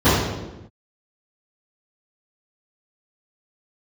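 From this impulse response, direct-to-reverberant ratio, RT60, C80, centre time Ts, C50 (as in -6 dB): -21.0 dB, no single decay rate, 2.5 dB, 84 ms, -1.0 dB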